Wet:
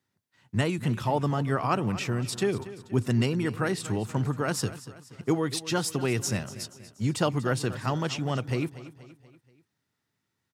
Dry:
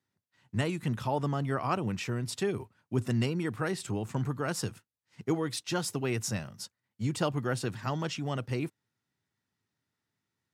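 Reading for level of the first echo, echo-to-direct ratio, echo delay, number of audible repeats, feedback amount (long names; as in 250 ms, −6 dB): −15.5 dB, −14.5 dB, 239 ms, 4, 49%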